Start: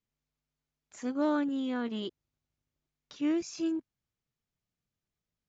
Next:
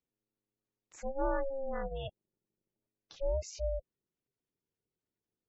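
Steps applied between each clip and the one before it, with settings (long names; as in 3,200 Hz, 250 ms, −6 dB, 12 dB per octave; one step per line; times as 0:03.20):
gate on every frequency bin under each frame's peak −20 dB strong
ring modulation 270 Hz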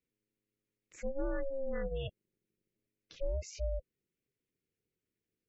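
drawn EQ curve 500 Hz 0 dB, 810 Hz −16 dB, 2,200 Hz +3 dB, 3,700 Hz −5 dB
downward compressor, threshold −33 dBFS, peak gain reduction 4.5 dB
level +3 dB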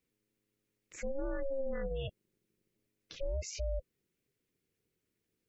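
brickwall limiter −34 dBFS, peak gain reduction 8.5 dB
level +5.5 dB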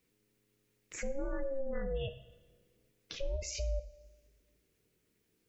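coupled-rooms reverb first 0.63 s, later 1.9 s, from −21 dB, DRR 8.5 dB
downward compressor 1.5 to 1, threshold −50 dBFS, peak gain reduction 7 dB
level +6.5 dB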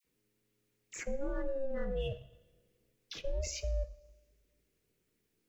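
all-pass dispersion lows, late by 46 ms, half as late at 1,400 Hz
in parallel at −5.5 dB: slack as between gear wheels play −47.5 dBFS
on the sum: level −3 dB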